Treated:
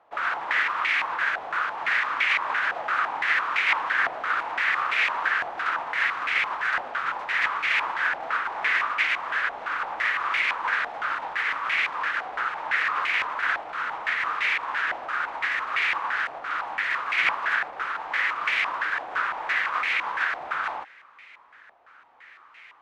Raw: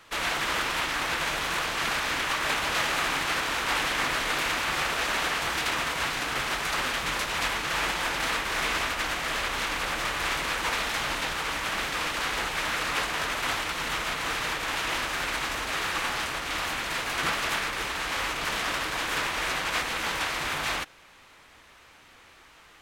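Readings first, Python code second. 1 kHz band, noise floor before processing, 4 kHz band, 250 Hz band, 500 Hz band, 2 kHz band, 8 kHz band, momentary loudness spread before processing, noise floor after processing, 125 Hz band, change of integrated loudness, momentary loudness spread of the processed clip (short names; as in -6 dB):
+3.0 dB, -54 dBFS, -6.0 dB, -12.0 dB, -4.5 dB, +4.5 dB, under -15 dB, 3 LU, -52 dBFS, under -15 dB, +2.5 dB, 6 LU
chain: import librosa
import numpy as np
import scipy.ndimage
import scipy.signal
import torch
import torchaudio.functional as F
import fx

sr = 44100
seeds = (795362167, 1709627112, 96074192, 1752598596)

y = fx.tilt_eq(x, sr, slope=4.5)
y = fx.filter_held_lowpass(y, sr, hz=5.9, low_hz=740.0, high_hz=2200.0)
y = y * 10.0 ** (-4.5 / 20.0)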